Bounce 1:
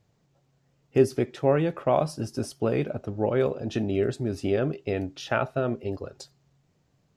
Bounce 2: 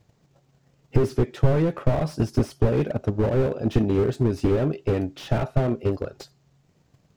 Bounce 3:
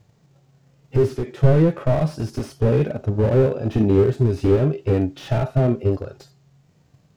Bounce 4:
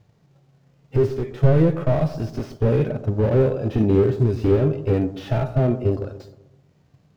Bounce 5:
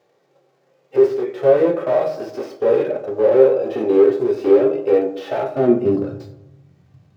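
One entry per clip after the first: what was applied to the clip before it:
transient shaper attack +11 dB, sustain -1 dB; slew-rate limiter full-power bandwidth 27 Hz; trim +4.5 dB
harmonic-percussive split percussive -13 dB; trim +7 dB
median filter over 5 samples; feedback echo behind a low-pass 129 ms, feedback 44%, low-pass 1.1 kHz, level -13 dB; trim -1 dB
high-pass sweep 470 Hz -> 91 Hz, 5.40–6.38 s; on a send at -1.5 dB: reverberation RT60 0.40 s, pre-delay 3 ms

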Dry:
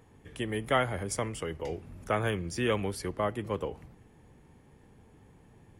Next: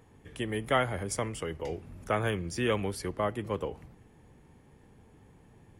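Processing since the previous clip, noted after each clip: no audible change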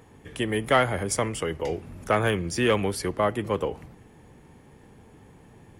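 bass shelf 110 Hz -5 dB; in parallel at -4.5 dB: saturation -23.5 dBFS, distortion -14 dB; on the sum: trim +3.5 dB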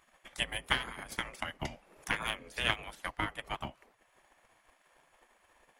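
spectral gate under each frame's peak -15 dB weak; tone controls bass +5 dB, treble -2 dB; transient shaper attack +9 dB, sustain -5 dB; trim -4.5 dB

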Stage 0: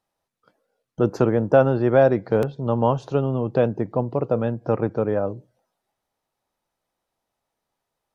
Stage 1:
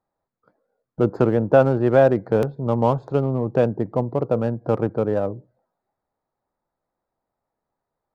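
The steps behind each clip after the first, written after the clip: local Wiener filter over 15 samples; trim +1 dB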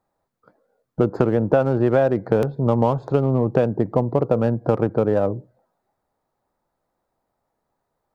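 compression 5:1, threshold -20 dBFS, peak gain reduction 10.5 dB; trim +6 dB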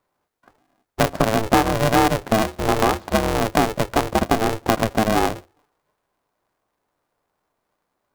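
high-pass 310 Hz 6 dB/octave; polarity switched at an audio rate 220 Hz; trim +2.5 dB

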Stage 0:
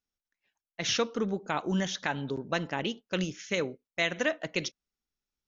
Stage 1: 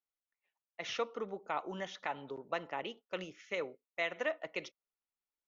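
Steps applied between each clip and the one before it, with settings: three-band isolator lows -16 dB, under 410 Hz, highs -15 dB, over 2.6 kHz; band-stop 1.6 kHz, Q 5.7; trim -3.5 dB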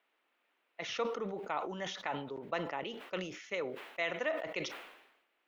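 band noise 280–2900 Hz -79 dBFS; decay stretcher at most 63 dB/s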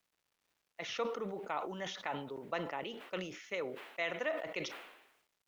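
bit crusher 12-bit; trim -1.5 dB

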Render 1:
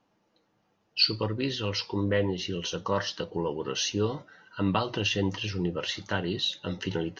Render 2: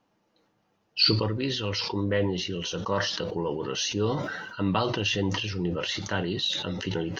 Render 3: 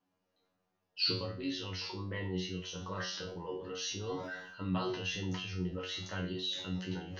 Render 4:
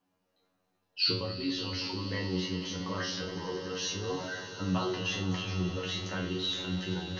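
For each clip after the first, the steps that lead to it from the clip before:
decay stretcher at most 38 dB/s
feedback comb 92 Hz, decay 0.38 s, harmonics all, mix 100%
echo with a slow build-up 94 ms, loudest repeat 5, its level -16 dB; trim +3.5 dB

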